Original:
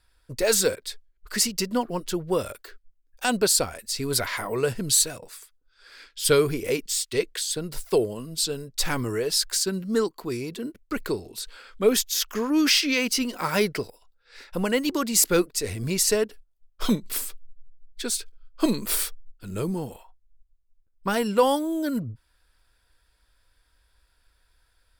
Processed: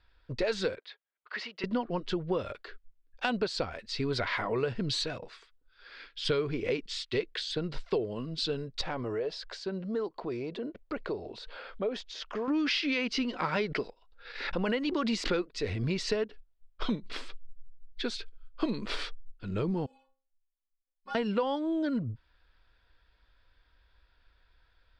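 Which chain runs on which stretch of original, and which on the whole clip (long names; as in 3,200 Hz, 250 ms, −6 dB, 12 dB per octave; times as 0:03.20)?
0:00.79–0:01.64: band-pass filter 730–4,100 Hz + high-shelf EQ 3,100 Hz −10 dB
0:08.81–0:12.48: parametric band 630 Hz +12 dB 1.2 octaves + downward compressor 2 to 1, threshold −39 dBFS
0:13.56–0:15.53: noise gate −50 dBFS, range −23 dB + parametric band 100 Hz −14.5 dB 0.79 octaves + background raised ahead of every attack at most 63 dB per second
0:19.86–0:21.15: bass and treble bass −13 dB, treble +13 dB + stiff-string resonator 260 Hz, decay 0.43 s, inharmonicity 0.008
whole clip: low-pass filter 4,100 Hz 24 dB per octave; downward compressor 5 to 1, threshold −27 dBFS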